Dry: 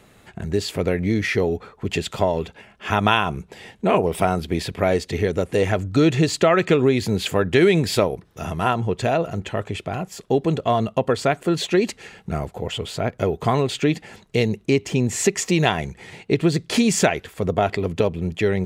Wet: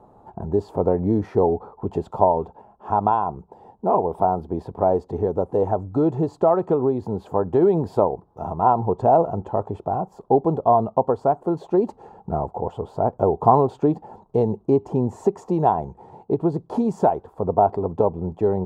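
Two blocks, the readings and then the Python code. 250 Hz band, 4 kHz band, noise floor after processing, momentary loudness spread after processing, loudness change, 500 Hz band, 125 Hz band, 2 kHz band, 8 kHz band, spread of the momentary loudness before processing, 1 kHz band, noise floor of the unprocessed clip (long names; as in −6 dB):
−2.0 dB, below −25 dB, −56 dBFS, 10 LU, −0.5 dB, +0.5 dB, −3.5 dB, below −20 dB, below −25 dB, 11 LU, +4.5 dB, −54 dBFS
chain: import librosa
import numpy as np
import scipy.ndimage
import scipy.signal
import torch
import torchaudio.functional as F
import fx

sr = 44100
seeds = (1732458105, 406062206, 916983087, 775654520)

y = fx.curve_eq(x, sr, hz=(170.0, 400.0, 620.0, 880.0, 2100.0, 4100.0), db=(0, 4, 5, 14, -28, -23))
y = fx.rider(y, sr, range_db=10, speed_s=2.0)
y = F.gain(torch.from_numpy(y), -4.5).numpy()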